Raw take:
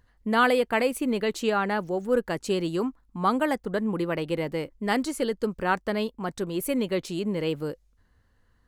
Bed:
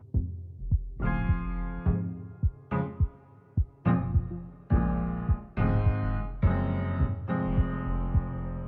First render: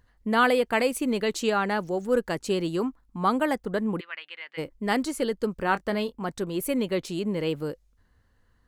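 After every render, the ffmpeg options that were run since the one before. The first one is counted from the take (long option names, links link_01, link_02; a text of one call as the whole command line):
ffmpeg -i in.wav -filter_complex "[0:a]asettb=1/sr,asplit=3[link_01][link_02][link_03];[link_01]atrim=end=0.664[link_04];[link_02]atrim=start=0.66:end=2.35,asetpts=PTS-STARTPTS,afade=type=in:duration=0.004:curve=qsin,afade=type=out:start_time=1.686:duration=0.004:curve=qsin,equalizer=frequency=6400:width_type=o:width=1.5:gain=4.5[link_05];[link_03]atrim=start=2.346[link_06];[link_04][link_05]acrossfade=duration=0.004:curve1=hsin:curve2=qsin[link_07];[link_07][link_06]acrossfade=duration=0.004:curve1=qsin:curve2=hsin,asplit=3[link_08][link_09][link_10];[link_08]afade=type=out:start_time=3.99:duration=0.02[link_11];[link_09]asuperpass=centerf=2300:order=4:qfactor=1.1,afade=type=in:start_time=3.99:duration=0.02,afade=type=out:start_time=4.57:duration=0.02[link_12];[link_10]afade=type=in:start_time=4.57:duration=0.02[link_13];[link_11][link_12][link_13]amix=inputs=3:normalize=0,asettb=1/sr,asplit=3[link_14][link_15][link_16];[link_14]atrim=end=5.644[link_17];[link_15]atrim=start=5.64:end=6.25,asetpts=PTS-STARTPTS,afade=type=in:duration=0.004:curve=qsin,afade=type=out:start_time=0.606:duration=0.004:curve=qsin,asplit=2[link_18][link_19];[link_19]adelay=25,volume=-13dB[link_20];[link_18][link_20]amix=inputs=2:normalize=0,atrim=end_sample=26901[link_21];[link_16]atrim=start=6.246[link_22];[link_17][link_21]acrossfade=duration=0.004:curve1=hsin:curve2=qsin[link_23];[link_23][link_22]acrossfade=duration=0.004:curve1=qsin:curve2=hsin" out.wav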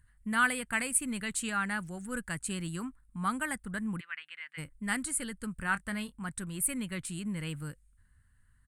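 ffmpeg -i in.wav -af "firequalizer=gain_entry='entry(130,0);entry(410,-22);entry(1500,-1);entry(3600,-9);entry(5900,-11);entry(8800,13);entry(13000,-7)':delay=0.05:min_phase=1" out.wav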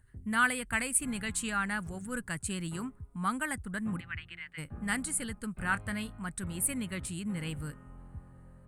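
ffmpeg -i in.wav -i bed.wav -filter_complex "[1:a]volume=-20dB[link_01];[0:a][link_01]amix=inputs=2:normalize=0" out.wav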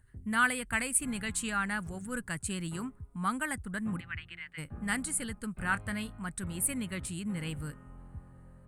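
ffmpeg -i in.wav -af anull out.wav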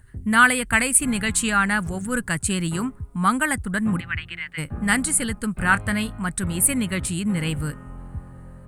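ffmpeg -i in.wav -af "volume=12dB,alimiter=limit=-3dB:level=0:latency=1" out.wav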